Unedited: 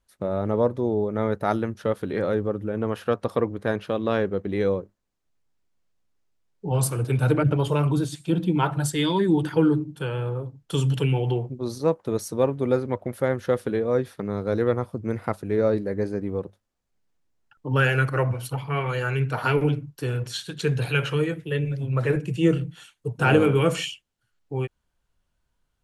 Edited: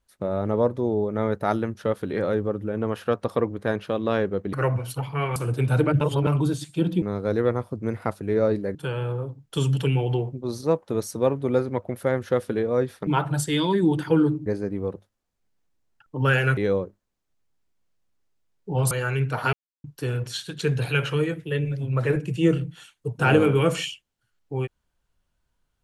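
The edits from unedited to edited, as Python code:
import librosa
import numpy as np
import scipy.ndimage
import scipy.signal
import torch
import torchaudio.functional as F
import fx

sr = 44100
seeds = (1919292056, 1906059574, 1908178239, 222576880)

y = fx.edit(x, sr, fx.swap(start_s=4.53, length_s=2.34, other_s=18.08, other_length_s=0.83),
    fx.reverse_span(start_s=7.52, length_s=0.26),
    fx.swap(start_s=8.53, length_s=1.39, other_s=14.24, other_length_s=1.73),
    fx.silence(start_s=19.53, length_s=0.31), tone=tone)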